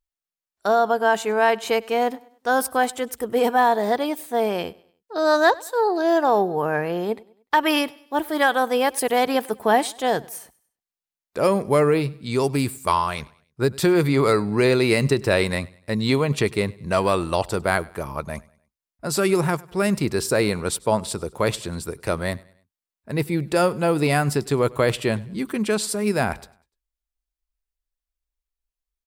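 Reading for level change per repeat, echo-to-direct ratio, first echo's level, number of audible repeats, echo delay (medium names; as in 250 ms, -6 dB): -7.5 dB, -22.5 dB, -23.5 dB, 2, 99 ms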